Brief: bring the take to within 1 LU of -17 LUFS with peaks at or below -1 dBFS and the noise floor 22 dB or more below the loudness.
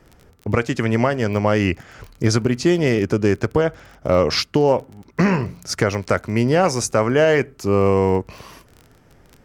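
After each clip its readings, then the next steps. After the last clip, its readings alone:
tick rate 21 per s; loudness -19.5 LUFS; peak level -4.0 dBFS; loudness target -17.0 LUFS
-> de-click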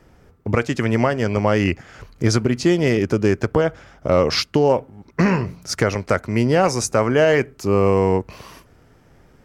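tick rate 0 per s; loudness -19.5 LUFS; peak level -4.0 dBFS; loudness target -17.0 LUFS
-> trim +2.5 dB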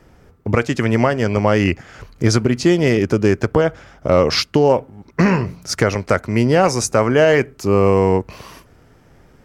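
loudness -17.0 LUFS; peak level -1.5 dBFS; noise floor -50 dBFS

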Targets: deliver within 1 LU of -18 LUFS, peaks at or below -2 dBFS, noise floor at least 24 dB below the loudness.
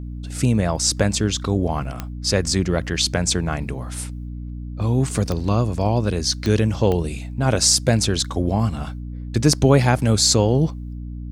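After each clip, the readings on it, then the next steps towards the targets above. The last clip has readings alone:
clicks found 4; hum 60 Hz; highest harmonic 300 Hz; hum level -28 dBFS; loudness -20.0 LUFS; peak level -2.5 dBFS; loudness target -18.0 LUFS
-> de-click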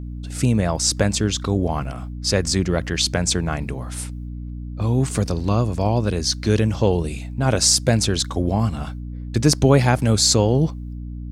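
clicks found 0; hum 60 Hz; highest harmonic 300 Hz; hum level -28 dBFS
-> hum notches 60/120/180/240/300 Hz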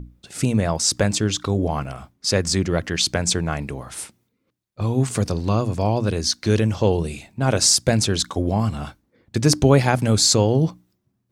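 hum not found; loudness -20.5 LUFS; peak level -2.0 dBFS; loudness target -18.0 LUFS
-> trim +2.5 dB; peak limiter -2 dBFS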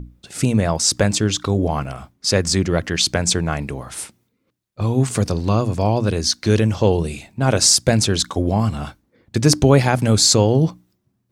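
loudness -18.0 LUFS; peak level -2.0 dBFS; noise floor -69 dBFS

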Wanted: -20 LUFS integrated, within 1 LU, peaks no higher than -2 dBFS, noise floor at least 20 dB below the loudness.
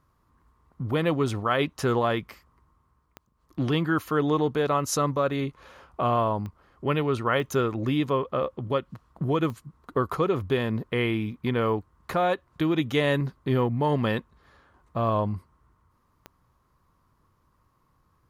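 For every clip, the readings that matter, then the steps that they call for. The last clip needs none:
clicks found 5; loudness -26.5 LUFS; peak level -9.5 dBFS; loudness target -20.0 LUFS
-> de-click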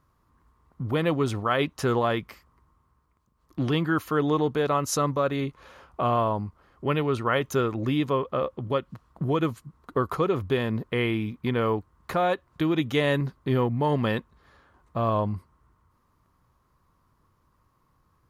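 clicks found 0; loudness -26.5 LUFS; peak level -9.5 dBFS; loudness target -20.0 LUFS
-> trim +6.5 dB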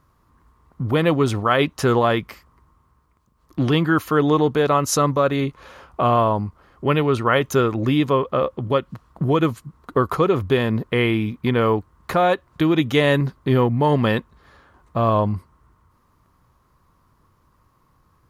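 loudness -20.0 LUFS; peak level -3.0 dBFS; noise floor -62 dBFS

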